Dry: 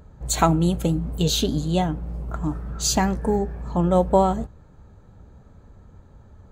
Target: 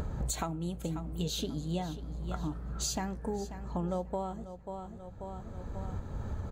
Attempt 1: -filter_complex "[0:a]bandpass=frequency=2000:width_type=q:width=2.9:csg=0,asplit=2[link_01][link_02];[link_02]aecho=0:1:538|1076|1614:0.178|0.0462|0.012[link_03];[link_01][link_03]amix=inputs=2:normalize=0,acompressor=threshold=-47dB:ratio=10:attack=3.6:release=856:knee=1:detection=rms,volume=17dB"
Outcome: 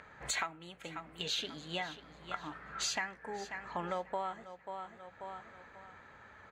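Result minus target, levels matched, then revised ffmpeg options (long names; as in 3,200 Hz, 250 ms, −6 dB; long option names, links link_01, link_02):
2,000 Hz band +13.0 dB
-filter_complex "[0:a]asplit=2[link_01][link_02];[link_02]aecho=0:1:538|1076|1614:0.178|0.0462|0.012[link_03];[link_01][link_03]amix=inputs=2:normalize=0,acompressor=threshold=-47dB:ratio=10:attack=3.6:release=856:knee=1:detection=rms,volume=17dB"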